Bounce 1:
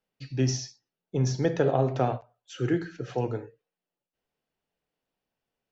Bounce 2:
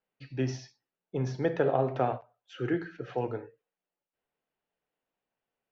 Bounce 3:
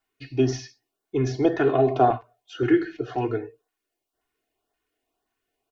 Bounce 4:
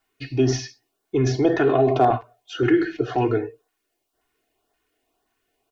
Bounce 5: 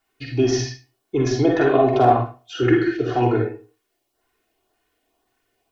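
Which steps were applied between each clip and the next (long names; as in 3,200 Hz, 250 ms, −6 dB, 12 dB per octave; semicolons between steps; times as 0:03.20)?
low-pass filter 2,700 Hz 12 dB per octave; low-shelf EQ 260 Hz −8.5 dB
comb filter 2.8 ms, depth 91%; auto-filter notch saw up 1.9 Hz 440–2,800 Hz; level +7 dB
in parallel at −3 dB: compressor whose output falls as the input rises −26 dBFS, ratio −1; on the sum: hard clipping −7.5 dBFS, distortion −35 dB
convolution reverb RT60 0.30 s, pre-delay 41 ms, DRR 0.5 dB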